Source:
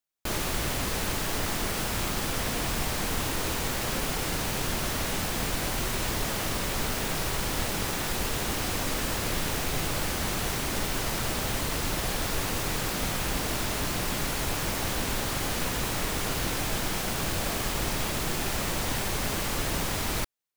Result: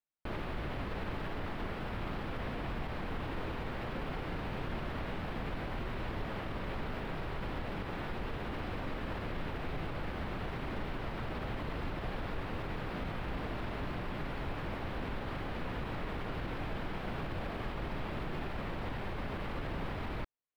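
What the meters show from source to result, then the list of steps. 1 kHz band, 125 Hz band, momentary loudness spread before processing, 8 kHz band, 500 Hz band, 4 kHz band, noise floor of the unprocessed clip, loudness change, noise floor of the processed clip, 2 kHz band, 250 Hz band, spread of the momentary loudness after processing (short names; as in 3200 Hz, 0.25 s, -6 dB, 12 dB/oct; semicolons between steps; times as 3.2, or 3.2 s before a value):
-8.0 dB, -6.5 dB, 0 LU, -35.0 dB, -7.0 dB, -17.5 dB, -31 dBFS, -11.0 dB, -40 dBFS, -10.5 dB, -6.5 dB, 1 LU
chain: limiter -22 dBFS, peak gain reduction 6.5 dB; air absorption 450 m; gain -3.5 dB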